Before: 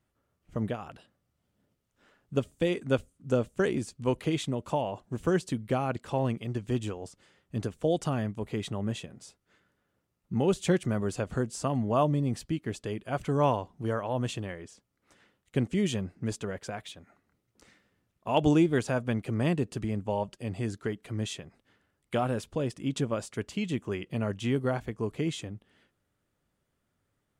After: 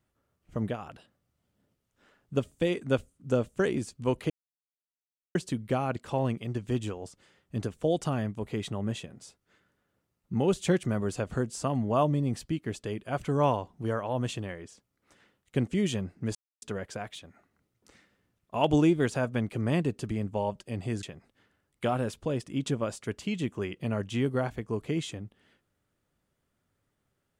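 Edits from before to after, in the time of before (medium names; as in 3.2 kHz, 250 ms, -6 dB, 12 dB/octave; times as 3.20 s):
4.30–5.35 s: mute
16.35 s: insert silence 0.27 s
20.76–21.33 s: delete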